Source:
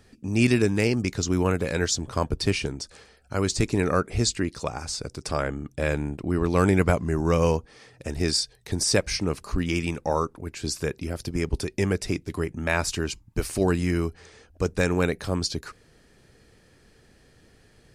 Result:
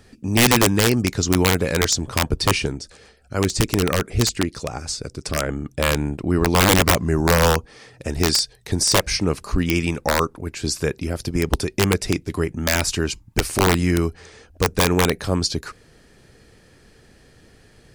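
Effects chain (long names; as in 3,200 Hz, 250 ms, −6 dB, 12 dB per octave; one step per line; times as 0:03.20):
wrap-around overflow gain 13.5 dB
0:02.78–0:05.49: rotating-speaker cabinet horn 6 Hz
level +5.5 dB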